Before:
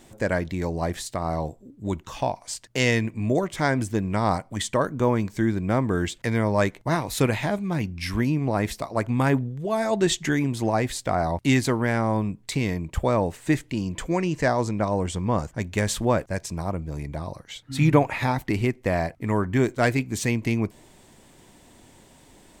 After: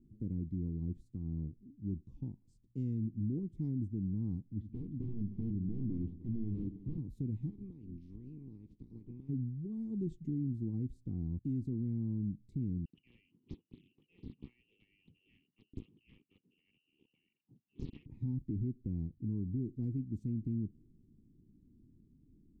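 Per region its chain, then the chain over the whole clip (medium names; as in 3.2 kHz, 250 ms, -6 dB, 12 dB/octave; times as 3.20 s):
4.49–6.98 s: integer overflow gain 17.5 dB + distance through air 300 m + two-band feedback delay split 350 Hz, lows 82 ms, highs 307 ms, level -11 dB
7.49–9.28 s: spectral peaks clipped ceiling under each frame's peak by 27 dB + low-pass 4.1 kHz + compression 12:1, threshold -29 dBFS
12.85–18.06 s: frequency inversion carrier 2.9 kHz + high-pass 120 Hz 24 dB/octave + loudspeaker Doppler distortion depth 0.97 ms
whole clip: inverse Chebyshev low-pass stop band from 580 Hz, stop band 40 dB; peak limiter -21 dBFS; trim -7.5 dB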